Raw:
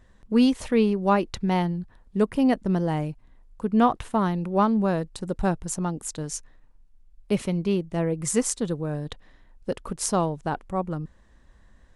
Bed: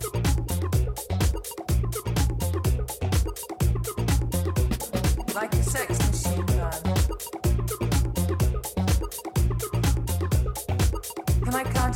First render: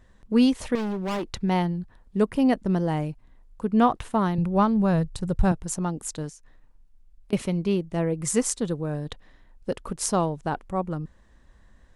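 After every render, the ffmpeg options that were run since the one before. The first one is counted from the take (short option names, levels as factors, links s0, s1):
-filter_complex "[0:a]asettb=1/sr,asplit=3[s0][s1][s2];[s0]atrim=end=0.754[s3];[s1]atrim=start=0.75:end=1.32,asetpts=PTS-STARTPTS,afade=t=in:d=0.004:c=qsin,afade=t=out:st=0.566:d=0.004:c=qsin,volume=20,asoftclip=hard,volume=0.0501[s4];[s2]atrim=start=1.316[s5];[s3][s4]acrossfade=d=0.004:c1=hsin:c2=qsin[s6];[s6][s5]acrossfade=d=0.004:c1=qsin:c2=hsin,asettb=1/sr,asplit=3[s7][s8][s9];[s7]atrim=end=4.384[s10];[s8]atrim=start=4.38:end=5.52,asetpts=PTS-STARTPTS,afade=t=in:d=0.004:c=qsin,afade=t=out:st=1.136:d=0.004:c=qsin,lowshelf=f=180:t=q:w=1.5:g=9.5[s11];[s9]atrim=start=5.516[s12];[s10][s11]acrossfade=d=0.004:c1=hsin:c2=qsin[s13];[s13][s12]acrossfade=d=0.004:c1=qsin:c2=hsin,asettb=1/sr,asplit=3[s14][s15][s16];[s14]atrim=end=6.294[s17];[s15]atrim=start=6.29:end=7.33,asetpts=PTS-STARTPTS,afade=t=in:d=0.004:c=qsin,afade=t=out:st=1.036:d=0.004:c=qsin,acompressor=threshold=0.00631:ratio=12:attack=3.2:release=140:knee=1:detection=peak[s18];[s16]atrim=start=7.326[s19];[s17][s18]acrossfade=d=0.004:c1=hsin:c2=qsin[s20];[s20][s19]acrossfade=d=0.004:c1=qsin:c2=hsin"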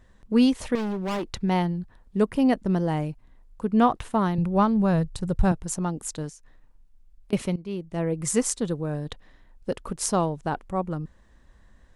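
-filter_complex "[0:a]asplit=2[s0][s1];[s0]atrim=end=7.56,asetpts=PTS-STARTPTS,afade=t=out:st=7.556:d=0.004:c=hsin:silence=0.149624[s2];[s1]atrim=start=7.56,asetpts=PTS-STARTPTS,afade=t=in:d=0.58:silence=0.149624[s3];[s2][s3]concat=n=2:v=0:a=1"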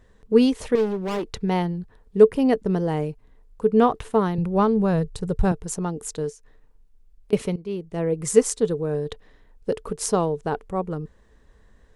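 -af "equalizer=f=440:w=7.2:g=14.5"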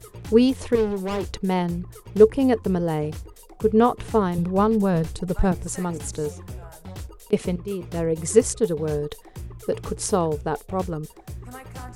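-filter_complex "[1:a]volume=0.211[s0];[0:a][s0]amix=inputs=2:normalize=0"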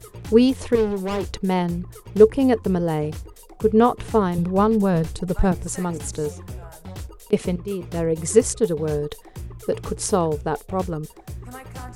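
-af "volume=1.19,alimiter=limit=0.794:level=0:latency=1"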